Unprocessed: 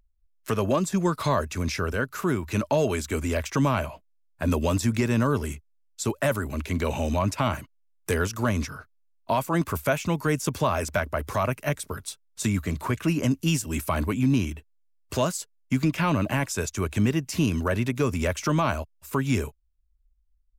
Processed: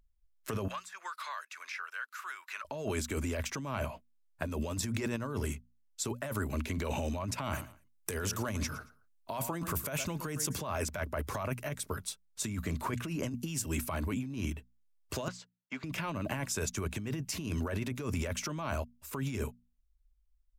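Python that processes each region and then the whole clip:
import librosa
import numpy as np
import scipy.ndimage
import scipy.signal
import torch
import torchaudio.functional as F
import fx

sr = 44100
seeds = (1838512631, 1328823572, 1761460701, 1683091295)

y = fx.chain(x, sr, fx.ladder_highpass(hz=1100.0, resonance_pct=30),
    fx.high_shelf(hz=4700.0, db=-8.0),
    fx.band_squash(depth_pct=100), at=(0.68, 2.65))
y = fx.chain(y, sr, fx.high_shelf(hz=5400.0, db=6.0),
    fx.echo_feedback(ms=113, feedback_pct=26, wet_db=-18.5), at=(7.44, 10.6))
y = fx.chain(y, sr, fx.highpass(hz=570.0, slope=12),
    fx.air_absorb(metres=180.0), at=(15.28, 15.84))
y = fx.hum_notches(y, sr, base_hz=60, count=4)
y = fx.over_compress(y, sr, threshold_db=-28.0, ratio=-1.0)
y = F.gain(torch.from_numpy(y), -6.5).numpy()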